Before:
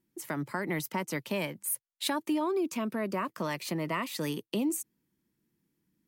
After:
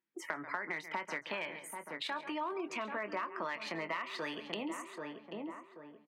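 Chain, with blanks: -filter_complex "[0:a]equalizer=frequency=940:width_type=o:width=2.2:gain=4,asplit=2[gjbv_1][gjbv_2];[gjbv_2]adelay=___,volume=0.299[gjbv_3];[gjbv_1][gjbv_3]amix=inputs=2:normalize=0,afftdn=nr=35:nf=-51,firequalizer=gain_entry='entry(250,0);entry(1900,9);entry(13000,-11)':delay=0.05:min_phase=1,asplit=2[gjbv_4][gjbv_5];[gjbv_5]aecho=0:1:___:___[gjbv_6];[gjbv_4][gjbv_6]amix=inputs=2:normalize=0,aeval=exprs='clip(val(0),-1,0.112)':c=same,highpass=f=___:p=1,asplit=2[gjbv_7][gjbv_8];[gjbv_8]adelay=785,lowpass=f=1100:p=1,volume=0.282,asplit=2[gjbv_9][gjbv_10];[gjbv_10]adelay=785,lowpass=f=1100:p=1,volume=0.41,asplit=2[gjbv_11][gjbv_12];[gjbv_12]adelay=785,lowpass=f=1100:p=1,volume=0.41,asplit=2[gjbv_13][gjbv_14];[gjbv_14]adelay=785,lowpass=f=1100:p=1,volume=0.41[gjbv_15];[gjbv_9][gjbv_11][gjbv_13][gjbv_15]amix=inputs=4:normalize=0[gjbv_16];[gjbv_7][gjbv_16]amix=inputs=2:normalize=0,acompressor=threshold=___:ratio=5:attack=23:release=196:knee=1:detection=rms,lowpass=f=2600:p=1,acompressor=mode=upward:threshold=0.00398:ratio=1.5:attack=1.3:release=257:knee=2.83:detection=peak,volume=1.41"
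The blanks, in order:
24, 137, 0.141, 640, 0.0112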